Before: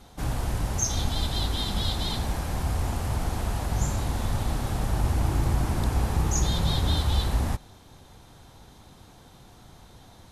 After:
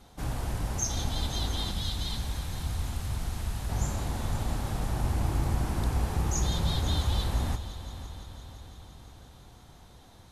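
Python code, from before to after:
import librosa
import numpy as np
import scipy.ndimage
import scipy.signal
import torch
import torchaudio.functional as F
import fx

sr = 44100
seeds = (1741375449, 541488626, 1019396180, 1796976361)

p1 = fx.peak_eq(x, sr, hz=540.0, db=-8.0, octaves=2.7, at=(1.71, 3.69))
p2 = p1 + fx.echo_heads(p1, sr, ms=170, heads='first and third', feedback_pct=68, wet_db=-15.5, dry=0)
y = p2 * 10.0 ** (-4.0 / 20.0)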